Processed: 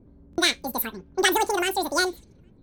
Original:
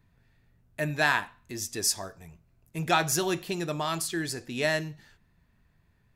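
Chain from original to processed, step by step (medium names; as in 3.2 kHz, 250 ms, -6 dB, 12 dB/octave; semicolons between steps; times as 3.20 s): speed mistake 33 rpm record played at 78 rpm; bass shelf 490 Hz +10.5 dB; on a send: feedback echo behind a high-pass 812 ms, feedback 63%, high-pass 5.3 kHz, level -23 dB; on the sum: level-controlled noise filter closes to 970 Hz, open at -27.5 dBFS; buffer glitch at 0.31 s, samples 1024, times 2; trim +3.5 dB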